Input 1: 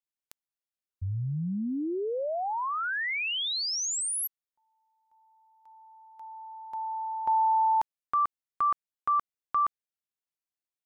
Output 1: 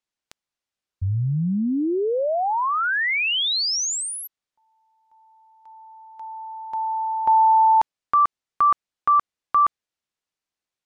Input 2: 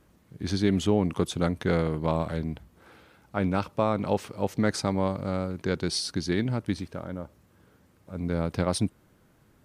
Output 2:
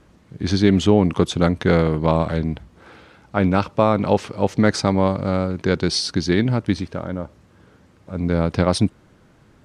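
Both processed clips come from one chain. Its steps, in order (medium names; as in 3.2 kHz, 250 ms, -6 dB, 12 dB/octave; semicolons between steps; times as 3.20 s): low-pass 6.9 kHz 12 dB/octave; trim +8.5 dB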